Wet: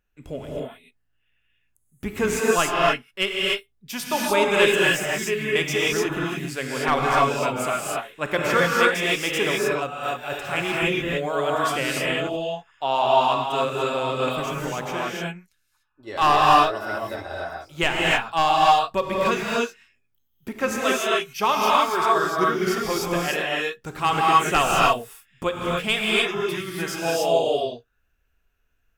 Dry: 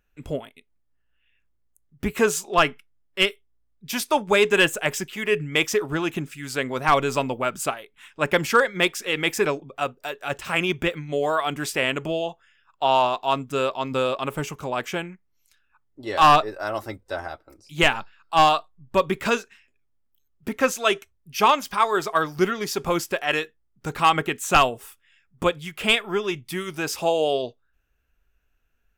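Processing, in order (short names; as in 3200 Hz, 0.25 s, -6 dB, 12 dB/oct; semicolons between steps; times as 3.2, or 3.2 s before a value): non-linear reverb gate 0.32 s rising, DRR -4.5 dB; 14.99–16.16 three-band expander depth 40%; gain -4.5 dB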